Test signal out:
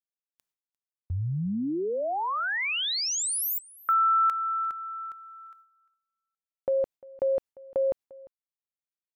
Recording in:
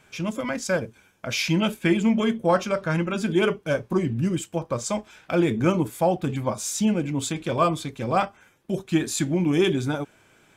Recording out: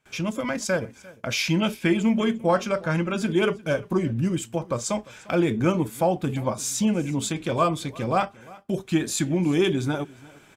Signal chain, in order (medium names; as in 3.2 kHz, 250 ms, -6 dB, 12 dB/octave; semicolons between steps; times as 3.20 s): gate with hold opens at -48 dBFS; in parallel at +0.5 dB: compression, threshold -35 dBFS; on the sum: delay 349 ms -22 dB; trim -2 dB